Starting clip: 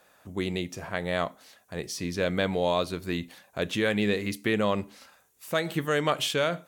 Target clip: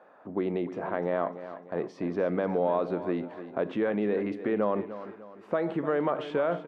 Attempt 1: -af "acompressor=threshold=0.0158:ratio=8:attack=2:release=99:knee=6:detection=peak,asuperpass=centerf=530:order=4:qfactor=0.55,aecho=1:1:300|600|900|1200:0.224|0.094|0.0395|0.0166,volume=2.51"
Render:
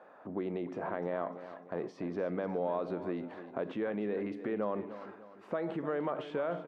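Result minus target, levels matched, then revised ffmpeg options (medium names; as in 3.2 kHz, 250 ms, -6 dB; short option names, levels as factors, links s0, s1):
compression: peak gain reduction +7 dB
-af "acompressor=threshold=0.0398:ratio=8:attack=2:release=99:knee=6:detection=peak,asuperpass=centerf=530:order=4:qfactor=0.55,aecho=1:1:300|600|900|1200:0.224|0.094|0.0395|0.0166,volume=2.51"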